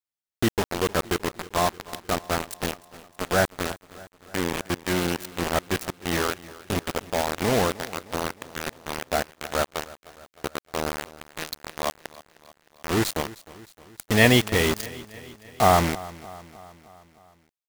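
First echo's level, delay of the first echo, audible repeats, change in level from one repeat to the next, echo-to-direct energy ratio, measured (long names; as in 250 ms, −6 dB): −19.0 dB, 309 ms, 4, −4.5 dB, −17.0 dB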